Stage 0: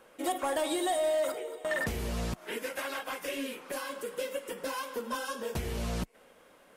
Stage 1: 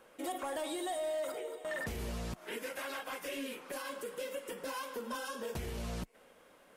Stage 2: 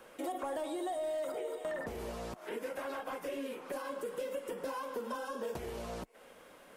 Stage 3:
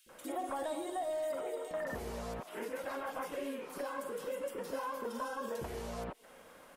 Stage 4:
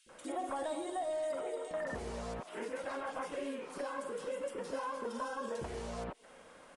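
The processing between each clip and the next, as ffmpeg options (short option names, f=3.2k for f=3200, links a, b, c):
-af "alimiter=level_in=5dB:limit=-24dB:level=0:latency=1:release=34,volume=-5dB,volume=-2.5dB"
-filter_complex "[0:a]acrossover=split=320|1200[a][b][c];[a]acompressor=threshold=-54dB:ratio=4[d];[b]acompressor=threshold=-41dB:ratio=4[e];[c]acompressor=threshold=-58dB:ratio=4[f];[d][e][f]amix=inputs=3:normalize=0,volume=5dB"
-filter_complex "[0:a]acrossover=split=390|2900[a][b][c];[a]adelay=60[d];[b]adelay=90[e];[d][e][c]amix=inputs=3:normalize=0,volume=1.5dB"
-af "aresample=22050,aresample=44100"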